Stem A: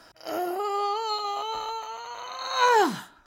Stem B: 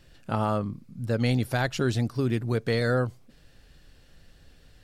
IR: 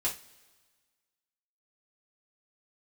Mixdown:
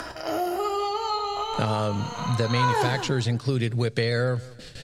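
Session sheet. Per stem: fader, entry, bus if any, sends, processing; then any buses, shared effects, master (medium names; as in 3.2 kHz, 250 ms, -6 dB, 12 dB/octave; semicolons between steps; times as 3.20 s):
-6.5 dB, 0.00 s, send -5.5 dB, echo send -6 dB, none
+0.5 dB, 1.30 s, no send, echo send -23 dB, gate with hold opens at -44 dBFS; graphic EQ 125/500/2000/4000/8000 Hz +8/+7/+7/+10/+10 dB; compression 2.5:1, threshold -24 dBFS, peak gain reduction 7.5 dB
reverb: on, pre-delay 3 ms
echo: feedback delay 184 ms, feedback 27%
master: upward compressor, threshold -45 dBFS; low-pass 12 kHz 12 dB/octave; three bands compressed up and down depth 70%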